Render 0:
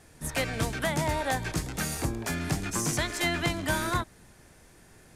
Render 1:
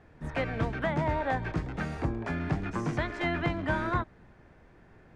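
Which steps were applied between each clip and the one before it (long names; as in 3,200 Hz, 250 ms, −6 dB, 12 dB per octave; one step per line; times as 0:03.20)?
low-pass filter 1,900 Hz 12 dB per octave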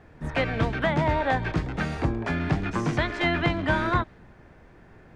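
dynamic equaliser 3,600 Hz, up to +5 dB, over −52 dBFS, Q 1.1
level +5 dB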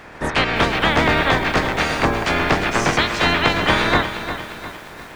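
ceiling on every frequency bin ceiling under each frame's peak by 20 dB
in parallel at +1 dB: downward compressor, threshold −32 dBFS, peak gain reduction 13 dB
on the sum: feedback echo at a low word length 353 ms, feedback 55%, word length 7 bits, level −10 dB
level +4.5 dB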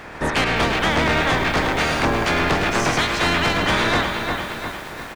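in parallel at −2 dB: speech leveller within 4 dB
on the sum: soft clipping −10.5 dBFS, distortion −11 dB
single-tap delay 105 ms −11 dB
level −3.5 dB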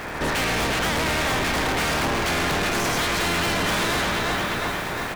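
gain into a clipping stage and back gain 27.5 dB
surface crackle 530 per second −37 dBFS
convolution reverb RT60 5.1 s, pre-delay 53 ms, DRR 11 dB
level +5 dB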